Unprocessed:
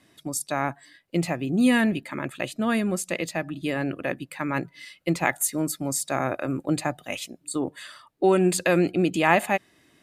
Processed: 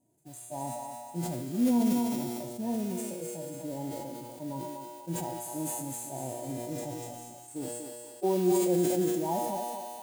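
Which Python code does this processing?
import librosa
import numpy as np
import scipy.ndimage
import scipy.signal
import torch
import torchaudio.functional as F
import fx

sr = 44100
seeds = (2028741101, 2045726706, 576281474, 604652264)

p1 = fx.brickwall_bandstop(x, sr, low_hz=1000.0, high_hz=6100.0)
p2 = fx.mod_noise(p1, sr, seeds[0], snr_db=15)
p3 = fx.comb_fb(p2, sr, f0_hz=120.0, decay_s=1.5, harmonics='all', damping=0.0, mix_pct=80)
p4 = p3 + fx.echo_thinned(p3, sr, ms=242, feedback_pct=39, hz=430.0, wet_db=-6.0, dry=0)
p5 = fx.hpss(p4, sr, part='percussive', gain_db=-15)
p6 = fx.sustainer(p5, sr, db_per_s=25.0)
y = p6 * 10.0 ** (4.5 / 20.0)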